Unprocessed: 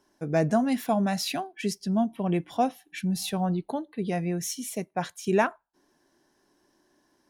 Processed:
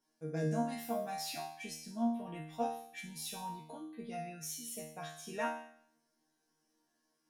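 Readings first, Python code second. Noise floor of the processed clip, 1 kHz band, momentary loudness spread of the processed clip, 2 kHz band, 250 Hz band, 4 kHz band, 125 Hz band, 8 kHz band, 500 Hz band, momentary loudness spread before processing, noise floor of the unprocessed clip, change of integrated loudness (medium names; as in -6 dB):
-80 dBFS, -10.0 dB, 10 LU, -11.0 dB, -13.0 dB, -10.0 dB, -12.5 dB, -8.0 dB, -12.5 dB, 7 LU, -70 dBFS, -12.0 dB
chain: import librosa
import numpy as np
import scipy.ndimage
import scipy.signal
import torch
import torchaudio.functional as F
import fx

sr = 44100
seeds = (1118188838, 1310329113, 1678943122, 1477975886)

y = fx.high_shelf(x, sr, hz=5700.0, db=7.0)
y = fx.resonator_bank(y, sr, root=51, chord='fifth', decay_s=0.64)
y = y * 10.0 ** (6.0 / 20.0)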